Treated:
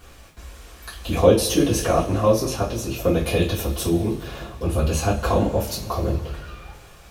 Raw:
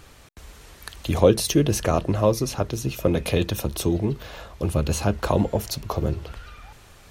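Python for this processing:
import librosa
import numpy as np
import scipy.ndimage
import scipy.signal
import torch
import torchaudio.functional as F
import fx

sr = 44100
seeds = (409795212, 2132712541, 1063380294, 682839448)

y = fx.rev_double_slope(x, sr, seeds[0], early_s=0.28, late_s=2.1, knee_db=-20, drr_db=-9.5)
y = fx.dmg_noise_colour(y, sr, seeds[1], colour='pink', level_db=-53.0)
y = y * 10.0 ** (-7.5 / 20.0)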